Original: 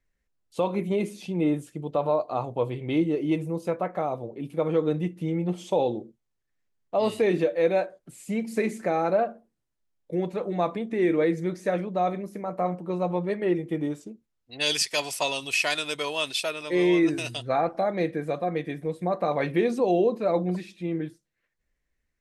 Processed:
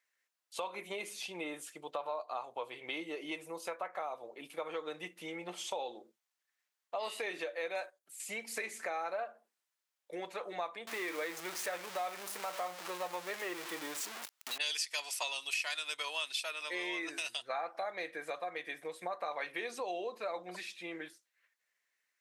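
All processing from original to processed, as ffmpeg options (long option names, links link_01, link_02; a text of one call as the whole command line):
ffmpeg -i in.wav -filter_complex "[0:a]asettb=1/sr,asplit=3[link_01][link_02][link_03];[link_01]atrim=end=7.754[link_04];[link_02]atrim=start=7.75:end=8.2,asetpts=PTS-STARTPTS,afade=type=in:duration=0.004:curve=qsin,afade=type=out:start_time=0.446:duration=0.004:curve=qsin,agate=range=-12dB:threshold=-41dB:ratio=16:release=100:detection=peak,highshelf=frequency=7000:gain=12[link_05];[link_03]atrim=start=8.196[link_06];[link_04][link_05]acrossfade=duration=0.004:curve1=hsin:curve2=qsin[link_07];[link_07][link_06]acrossfade=duration=0.004:curve1=qsin:curve2=hsin,asettb=1/sr,asplit=3[link_08][link_09][link_10];[link_08]atrim=end=10.874[link_11];[link_09]atrim=start=10.87:end=14.58,asetpts=PTS-STARTPTS,afade=type=in:duration=0.004:curve=qsin,afade=type=out:start_time=3.706:duration=0.004:curve=qsin,aeval=exprs='val(0)+0.5*0.0251*sgn(val(0))':channel_layout=same,acrusher=bits=7:mix=0:aa=0.5[link_12];[link_10]atrim=start=14.576[link_13];[link_11][link_12]acrossfade=duration=0.004:curve1=hsin:curve2=qsin[link_14];[link_14][link_13]acrossfade=duration=0.004:curve1=qsin:curve2=hsin,highpass=1000,acompressor=threshold=-42dB:ratio=3,volume=4dB" out.wav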